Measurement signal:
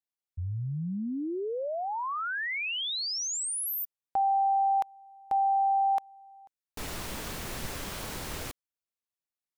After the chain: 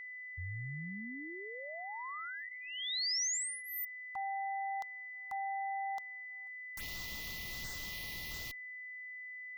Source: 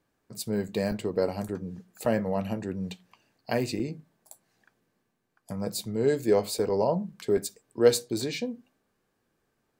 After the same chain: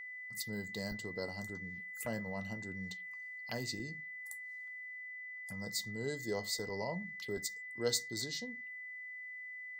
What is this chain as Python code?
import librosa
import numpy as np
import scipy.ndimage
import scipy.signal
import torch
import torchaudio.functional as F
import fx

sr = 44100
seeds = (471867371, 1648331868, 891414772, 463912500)

y = fx.env_phaser(x, sr, low_hz=280.0, high_hz=2300.0, full_db=-32.0)
y = fx.tone_stack(y, sr, knobs='5-5-5')
y = y + 10.0 ** (-49.0 / 20.0) * np.sin(2.0 * np.pi * 2000.0 * np.arange(len(y)) / sr)
y = F.gain(torch.from_numpy(y), 5.0).numpy()